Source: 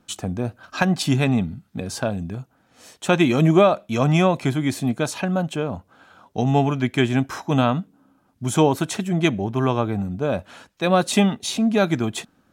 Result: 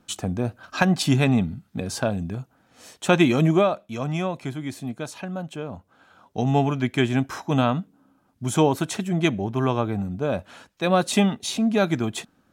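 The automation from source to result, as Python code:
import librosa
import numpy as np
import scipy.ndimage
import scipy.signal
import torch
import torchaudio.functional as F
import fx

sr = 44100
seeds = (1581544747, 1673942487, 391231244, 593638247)

y = fx.gain(x, sr, db=fx.line((3.23, 0.0), (4.0, -9.0), (5.39, -9.0), (6.48, -2.0)))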